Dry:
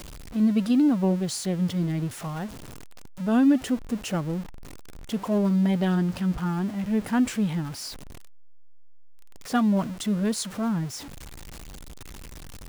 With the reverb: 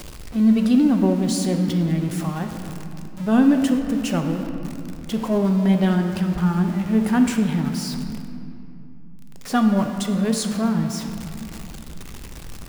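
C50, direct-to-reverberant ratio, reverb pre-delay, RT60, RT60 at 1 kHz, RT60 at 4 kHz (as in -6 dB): 6.0 dB, 4.5 dB, 3 ms, 2.7 s, 2.6 s, 1.6 s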